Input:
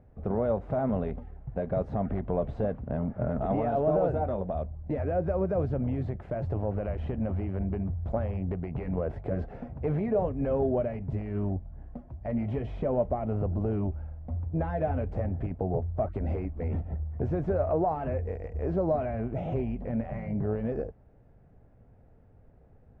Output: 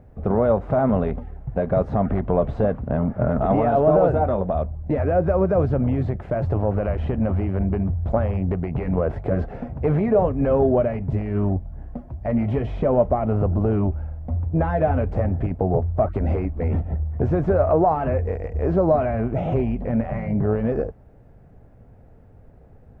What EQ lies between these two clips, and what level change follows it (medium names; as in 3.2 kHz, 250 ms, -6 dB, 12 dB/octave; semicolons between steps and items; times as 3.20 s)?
dynamic bell 1.2 kHz, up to +4 dB, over -49 dBFS, Q 1.9; +8.5 dB